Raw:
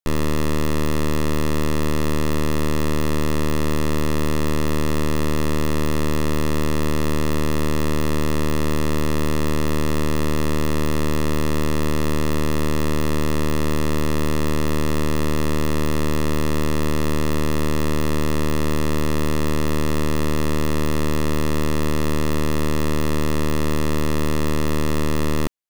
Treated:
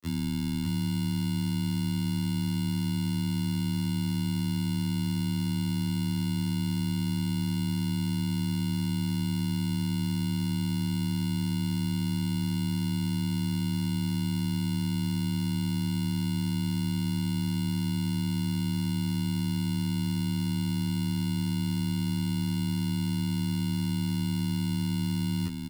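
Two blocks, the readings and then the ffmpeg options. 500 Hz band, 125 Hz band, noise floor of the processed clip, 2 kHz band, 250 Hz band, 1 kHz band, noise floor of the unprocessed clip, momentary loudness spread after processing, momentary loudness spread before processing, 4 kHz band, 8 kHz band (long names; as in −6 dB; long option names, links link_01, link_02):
below −20 dB, −4.0 dB, −30 dBFS, −13.5 dB, −5.0 dB, −16.0 dB, −18 dBFS, 0 LU, 0 LU, −5.0 dB, −9.0 dB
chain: -filter_complex "[0:a]equalizer=frequency=650:width_type=o:width=1.2:gain=-12,acrusher=bits=5:mix=0:aa=0.5,acompressor=mode=upward:threshold=-28dB:ratio=2.5,afreqshift=24,asplit=2[link_01][link_02];[link_02]aecho=0:1:600:0.531[link_03];[link_01][link_03]amix=inputs=2:normalize=0,afftfilt=real='re*2*eq(mod(b,4),0)':imag='im*2*eq(mod(b,4),0)':win_size=2048:overlap=0.75,volume=-6.5dB"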